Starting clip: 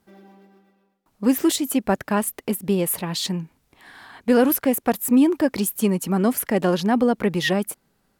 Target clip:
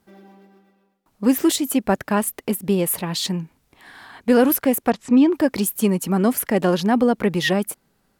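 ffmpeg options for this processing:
ffmpeg -i in.wav -filter_complex "[0:a]asplit=3[link_01][link_02][link_03];[link_01]afade=type=out:start_time=4.9:duration=0.02[link_04];[link_02]lowpass=frequency=5800:width=0.5412,lowpass=frequency=5800:width=1.3066,afade=type=in:start_time=4.9:duration=0.02,afade=type=out:start_time=5.32:duration=0.02[link_05];[link_03]afade=type=in:start_time=5.32:duration=0.02[link_06];[link_04][link_05][link_06]amix=inputs=3:normalize=0,volume=1.5dB" out.wav

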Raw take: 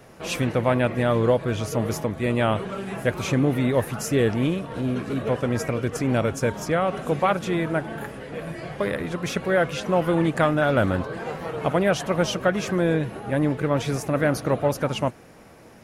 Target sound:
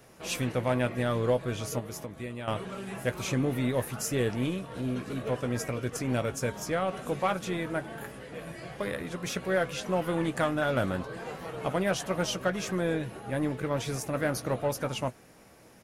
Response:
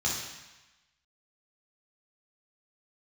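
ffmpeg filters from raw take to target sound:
-filter_complex "[0:a]asettb=1/sr,asplit=3[link_01][link_02][link_03];[link_01]atrim=end=1.794[link_04];[link_02]atrim=start=1.79:end=2.48,asetpts=PTS-STARTPTS,afade=type=in:duration=0.004:curve=qsin,afade=type=out:start_time=0.686:duration=0.004:curve=qsin,acompressor=threshold=-28dB:ratio=6[link_05];[link_03]atrim=start=2.476[link_06];[link_04][link_05]acrossfade=duration=0.004:curve1=hsin:curve2=qsin[link_07];[link_07][link_06]acrossfade=duration=0.004:curve1=qsin:curve2=hsin,aeval=exprs='0.398*(cos(1*acos(clip(val(0)/0.398,-1,1)))-cos(1*PI/2))+0.0178*(cos(4*acos(clip(val(0)/0.398,-1,1)))-cos(4*PI/2))+0.0158*(cos(6*acos(clip(val(0)/0.398,-1,1)))-cos(6*PI/2))':channel_layout=same,highshelf=frequency=3800:gain=7.5,asplit=2[link_08][link_09];[link_09]adelay=16,volume=-11dB[link_10];[link_08][link_10]amix=inputs=2:normalize=0,volume=-8dB"

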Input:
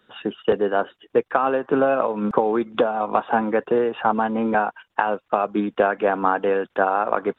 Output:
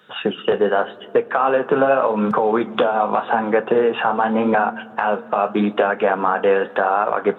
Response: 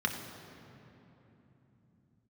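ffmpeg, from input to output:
-filter_complex "[0:a]highpass=130,equalizer=frequency=300:width_type=o:width=0.59:gain=-7.5,acompressor=threshold=-23dB:ratio=3,flanger=delay=6.5:depth=9.9:regen=-57:speed=0.85:shape=sinusoidal,asplit=2[link_01][link_02];[1:a]atrim=start_sample=2205,adelay=30[link_03];[link_02][link_03]afir=irnorm=-1:irlink=0,volume=-24dB[link_04];[link_01][link_04]amix=inputs=2:normalize=0,alimiter=level_in=18.5dB:limit=-1dB:release=50:level=0:latency=1,volume=-4.5dB"

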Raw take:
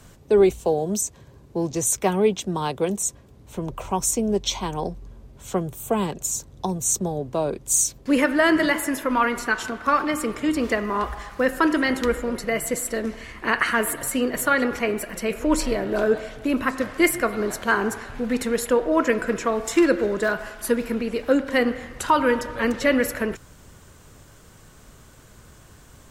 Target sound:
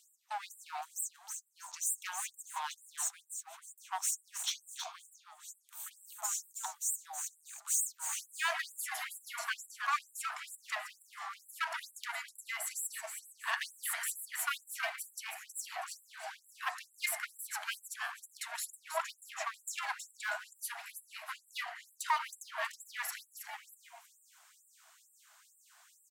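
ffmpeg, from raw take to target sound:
ffmpeg -i in.wav -filter_complex "[0:a]aeval=exprs='clip(val(0),-1,0.0631)':channel_layout=same,asplit=5[link_01][link_02][link_03][link_04][link_05];[link_02]adelay=320,afreqshift=150,volume=-7.5dB[link_06];[link_03]adelay=640,afreqshift=300,volume=-17.1dB[link_07];[link_04]adelay=960,afreqshift=450,volume=-26.8dB[link_08];[link_05]adelay=1280,afreqshift=600,volume=-36.4dB[link_09];[link_01][link_06][link_07][link_08][link_09]amix=inputs=5:normalize=0,afftfilt=real='re*gte(b*sr/1024,610*pow(7500/610,0.5+0.5*sin(2*PI*2.2*pts/sr)))':imag='im*gte(b*sr/1024,610*pow(7500/610,0.5+0.5*sin(2*PI*2.2*pts/sr)))':win_size=1024:overlap=0.75,volume=-8.5dB" out.wav

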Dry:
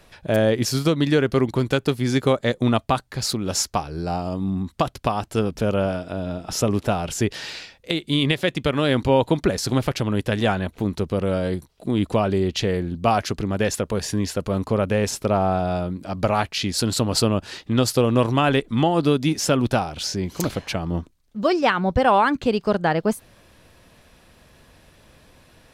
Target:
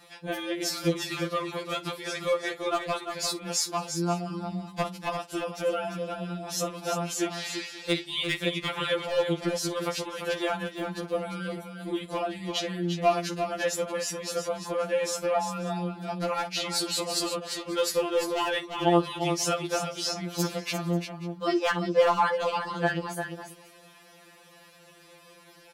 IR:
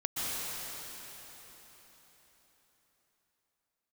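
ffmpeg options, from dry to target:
-filter_complex "[0:a]highpass=frequency=340:poles=1,asplit=2[link_01][link_02];[link_02]acompressor=threshold=-34dB:ratio=16,volume=2.5dB[link_03];[link_01][link_03]amix=inputs=2:normalize=0,aeval=exprs='0.398*(abs(mod(val(0)/0.398+3,4)-2)-1)':channel_layout=same,aecho=1:1:52|347|538:0.133|0.422|0.1,afftfilt=real='re*2.83*eq(mod(b,8),0)':imag='im*2.83*eq(mod(b,8),0)':win_size=2048:overlap=0.75,volume=-4.5dB"

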